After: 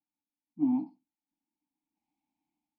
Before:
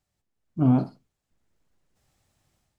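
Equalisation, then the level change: vowel filter u; fixed phaser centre 400 Hz, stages 6; +2.0 dB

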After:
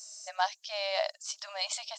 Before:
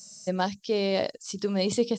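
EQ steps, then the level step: brick-wall FIR high-pass 580 Hz; 0.0 dB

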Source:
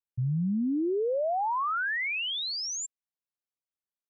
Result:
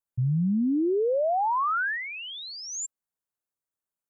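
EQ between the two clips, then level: band shelf 3400 Hz -9.5 dB; +3.5 dB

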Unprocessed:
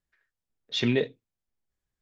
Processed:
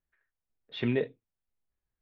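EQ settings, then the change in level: air absorption 490 m; bell 180 Hz -3.5 dB 2.7 oct; 0.0 dB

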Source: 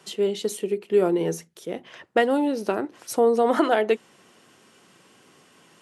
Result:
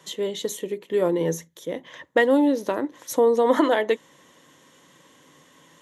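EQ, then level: ripple EQ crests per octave 1.1, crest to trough 9 dB; 0.0 dB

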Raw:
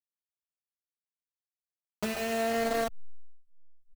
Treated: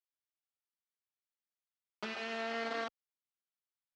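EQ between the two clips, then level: speaker cabinet 420–4400 Hz, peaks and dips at 460 Hz -7 dB, 660 Hz -10 dB, 1000 Hz -4 dB, 1800 Hz -4 dB, 2600 Hz -4 dB, 4000 Hz -4 dB; 0.0 dB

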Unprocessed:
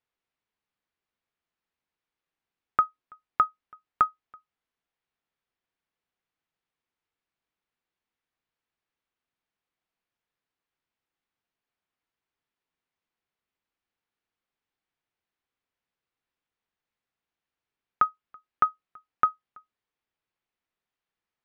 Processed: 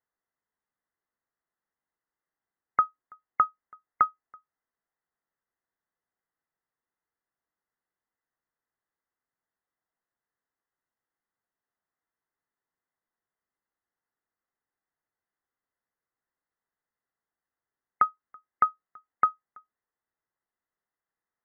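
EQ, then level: brick-wall FIR low-pass 2100 Hz; low shelf 320 Hz -5 dB; 0.0 dB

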